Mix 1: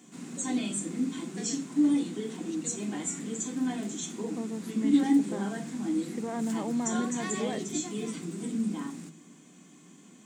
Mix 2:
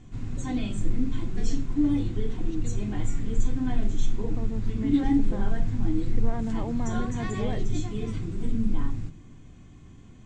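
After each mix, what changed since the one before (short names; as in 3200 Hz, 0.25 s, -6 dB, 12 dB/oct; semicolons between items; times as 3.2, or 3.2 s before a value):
background: remove Chebyshev high-pass 170 Hz, order 5; master: add air absorption 130 m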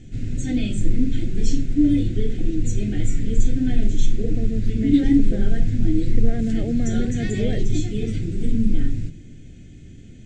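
second voice +7.5 dB; background +6.5 dB; master: add Butterworth band-stop 990 Hz, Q 0.89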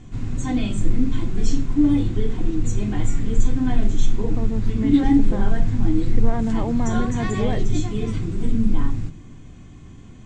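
master: remove Butterworth band-stop 990 Hz, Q 0.89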